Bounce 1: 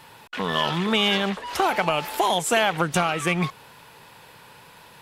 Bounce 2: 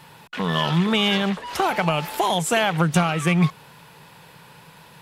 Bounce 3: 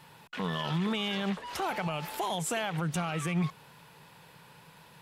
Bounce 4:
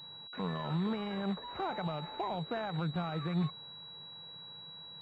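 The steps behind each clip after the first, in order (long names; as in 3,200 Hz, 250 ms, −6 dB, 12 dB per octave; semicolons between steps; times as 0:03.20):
parametric band 160 Hz +9.5 dB 0.56 octaves
brickwall limiter −15 dBFS, peak gain reduction 8 dB; level −7.5 dB
high-frequency loss of the air 230 metres; switching amplifier with a slow clock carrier 3,900 Hz; level −2.5 dB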